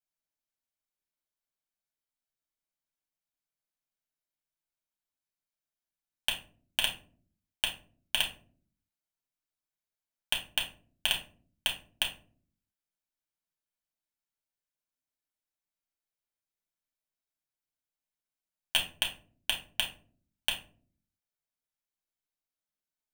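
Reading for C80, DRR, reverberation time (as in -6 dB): 15.5 dB, -1.5 dB, no single decay rate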